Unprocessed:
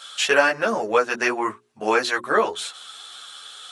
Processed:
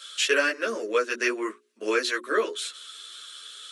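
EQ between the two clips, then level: high-pass 260 Hz 24 dB/octave; static phaser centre 330 Hz, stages 4; -1.5 dB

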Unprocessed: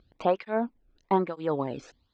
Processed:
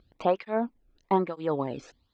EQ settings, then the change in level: band-stop 1.5 kHz, Q 21; 0.0 dB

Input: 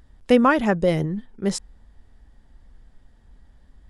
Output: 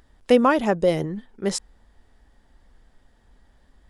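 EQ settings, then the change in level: tone controls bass -8 dB, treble 0 dB; dynamic bell 1.7 kHz, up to -6 dB, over -32 dBFS, Q 1.1; +2.0 dB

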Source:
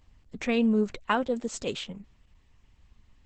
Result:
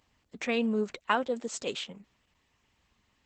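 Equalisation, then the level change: high-pass 380 Hz 6 dB/octave; 0.0 dB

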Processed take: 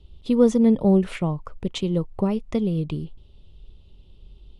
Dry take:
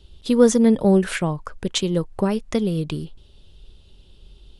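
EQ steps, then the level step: tone controls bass +4 dB, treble -11 dB; peaking EQ 1.6 kHz -14.5 dB 0.28 oct; -3.5 dB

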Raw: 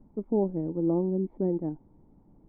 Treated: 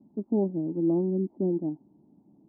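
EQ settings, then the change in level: Butterworth band-pass 350 Hz, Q 0.7; peaking EQ 490 Hz -12.5 dB 0.38 oct; +3.5 dB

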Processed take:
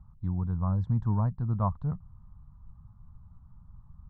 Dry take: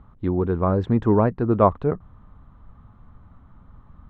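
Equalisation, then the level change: FFT filter 160 Hz 0 dB, 390 Hz -27 dB, 950 Hz -8 dB, 2.6 kHz -26 dB, 4.5 kHz -11 dB; -2.5 dB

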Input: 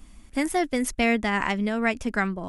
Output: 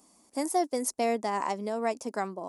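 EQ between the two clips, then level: high-pass 400 Hz 12 dB/octave; high-order bell 2.2 kHz -14.5 dB; 0.0 dB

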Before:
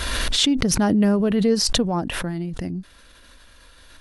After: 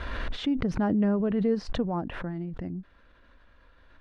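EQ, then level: low-pass 1.8 kHz 12 dB/octave; -6.5 dB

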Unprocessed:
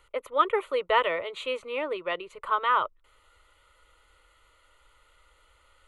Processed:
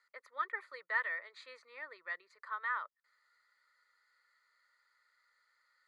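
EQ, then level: two resonant band-passes 2.9 kHz, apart 1.4 oct; 0.0 dB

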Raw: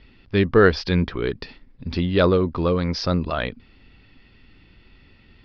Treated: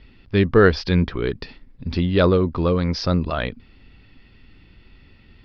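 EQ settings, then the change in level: bass shelf 200 Hz +3.5 dB; 0.0 dB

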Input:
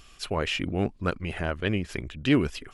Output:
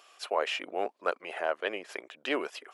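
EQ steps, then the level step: high-pass 610 Hz 24 dB/octave; tilt shelf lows +9.5 dB, about 770 Hz; +4.0 dB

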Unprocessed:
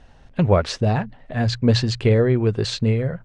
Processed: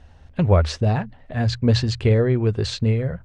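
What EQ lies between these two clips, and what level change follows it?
peaking EQ 77 Hz +14.5 dB 0.43 oct; -2.0 dB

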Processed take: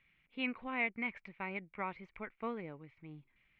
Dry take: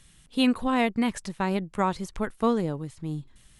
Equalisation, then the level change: four-pole ladder low-pass 2.4 kHz, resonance 80%; bass shelf 150 Hz -9 dB; band-stop 1.7 kHz, Q 17; -3.0 dB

